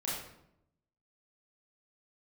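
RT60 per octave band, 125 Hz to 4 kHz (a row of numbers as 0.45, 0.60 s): 1.1, 1.0, 0.85, 0.70, 0.60, 0.55 s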